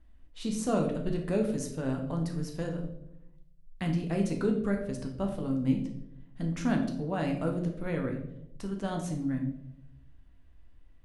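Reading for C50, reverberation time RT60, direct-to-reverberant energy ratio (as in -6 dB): 7.0 dB, 0.85 s, 2.0 dB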